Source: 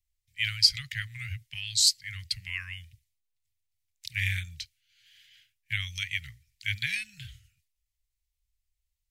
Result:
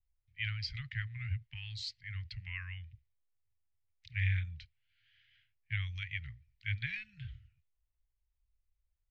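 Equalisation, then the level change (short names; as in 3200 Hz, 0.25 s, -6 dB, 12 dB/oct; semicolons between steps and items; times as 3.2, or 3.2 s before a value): air absorption 50 m; tape spacing loss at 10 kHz 43 dB; bell 210 Hz -6.5 dB 0.71 oct; +2.0 dB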